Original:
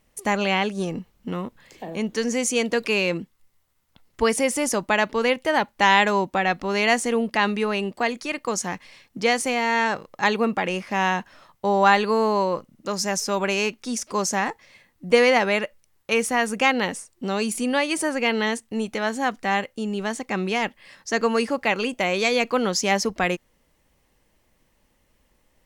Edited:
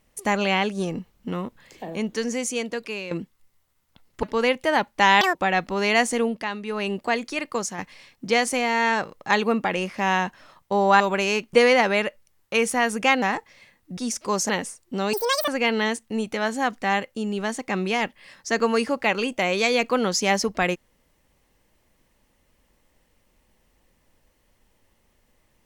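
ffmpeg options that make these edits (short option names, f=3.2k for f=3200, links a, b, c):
-filter_complex "[0:a]asplit=15[a][b][c][d][e][f][g][h][i][j][k][l][m][n][o];[a]atrim=end=3.11,asetpts=PTS-STARTPTS,afade=t=out:st=1.89:d=1.22:silence=0.223872[p];[b]atrim=start=3.11:end=4.232,asetpts=PTS-STARTPTS,afade=t=in:d=0.004:c=hsin:silence=0.223872[q];[c]atrim=start=5.038:end=6.024[r];[d]atrim=start=6.02:end=6.28,asetpts=PTS-STARTPTS,asetrate=81144,aresample=44100[s];[e]atrim=start=6.276:end=7.43,asetpts=PTS-STARTPTS,afade=t=out:st=0.854:d=0.3:silence=0.334965[t];[f]atrim=start=7.43:end=7.55,asetpts=PTS-STARTPTS,volume=-9.5dB[u];[g]atrim=start=7.55:end=8.71,asetpts=PTS-STARTPTS,afade=t=in:d=0.3:silence=0.334965,afade=t=out:st=0.91:d=0.25:silence=0.446684[v];[h]atrim=start=8.71:end=11.932,asetpts=PTS-STARTPTS,afade=t=in:d=0.004:c=hsin:silence=0.446684[w];[i]atrim=start=13.298:end=13.832[x];[j]atrim=start=15.098:end=16.792[y];[k]atrim=start=14.348:end=15.102[z];[l]atrim=start=13.828:end=14.352[aa];[m]atrim=start=16.788:end=17.434[ab];[n]atrim=start=17.43:end=18.09,asetpts=PTS-STARTPTS,asetrate=83790,aresample=44100[ac];[o]atrim=start=18.086[ad];[p][q]concat=n=2:v=0:a=1[ae];[ae][r]acrossfade=d=0.004:c1=hsin:c2=hsin[af];[af][s]acrossfade=d=0.004:c1=hsin:c2=hsin[ag];[t][u][v][w]concat=n=4:v=0:a=1[ah];[ag][ah]acrossfade=d=0.004:c1=hsin:c2=hsin[ai];[ai][x]acrossfade=d=0.004:c1=hsin:c2=hsin[aj];[aj][y]acrossfade=d=0.004:c1=hsin:c2=hsin[ak];[ak][z]acrossfade=d=0.004:c1=hsin:c2=hsin[al];[al][aa]acrossfade=d=0.004:c1=hsin:c2=hsin[am];[am][ab]acrossfade=d=0.004:c1=hsin:c2=hsin[an];[an][ac]acrossfade=d=0.004:c1=hsin:c2=hsin[ao];[ao][ad]acrossfade=d=0.004:c1=hsin:c2=hsin"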